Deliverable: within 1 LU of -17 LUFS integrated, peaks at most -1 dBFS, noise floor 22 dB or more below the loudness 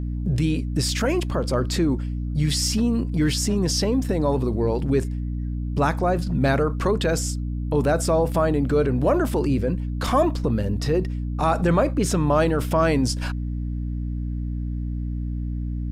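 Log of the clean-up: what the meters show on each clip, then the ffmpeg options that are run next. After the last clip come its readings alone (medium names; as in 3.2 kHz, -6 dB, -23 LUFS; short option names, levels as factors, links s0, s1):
hum 60 Hz; highest harmonic 300 Hz; hum level -24 dBFS; loudness -23.0 LUFS; peak level -8.5 dBFS; loudness target -17.0 LUFS
-> -af "bandreject=f=60:t=h:w=4,bandreject=f=120:t=h:w=4,bandreject=f=180:t=h:w=4,bandreject=f=240:t=h:w=4,bandreject=f=300:t=h:w=4"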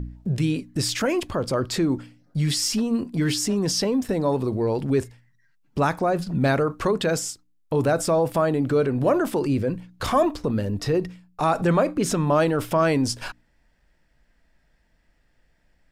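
hum not found; loudness -23.5 LUFS; peak level -9.0 dBFS; loudness target -17.0 LUFS
-> -af "volume=2.11"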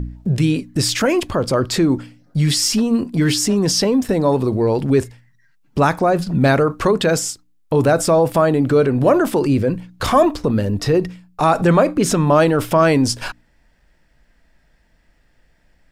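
loudness -17.0 LUFS; peak level -2.5 dBFS; noise floor -58 dBFS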